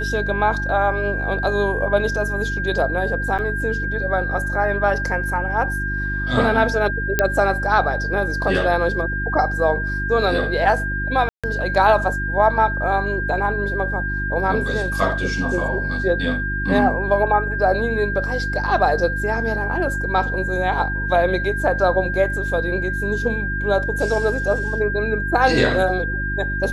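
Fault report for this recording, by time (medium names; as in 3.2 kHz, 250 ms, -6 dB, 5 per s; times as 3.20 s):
hum 50 Hz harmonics 7 -26 dBFS
whine 1.6 kHz -24 dBFS
3.38–3.39 s: dropout 7.8 ms
7.19 s: pop -2 dBFS
11.29–11.44 s: dropout 146 ms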